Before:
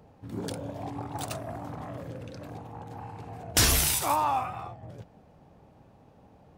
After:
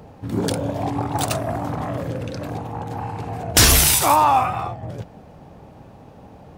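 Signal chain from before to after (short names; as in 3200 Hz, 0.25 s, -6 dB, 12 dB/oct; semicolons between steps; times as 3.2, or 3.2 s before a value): in parallel at -1 dB: limiter -22 dBFS, peak gain reduction 10.5 dB; on the sum: hard clip -13.5 dBFS, distortion -26 dB; gain +7 dB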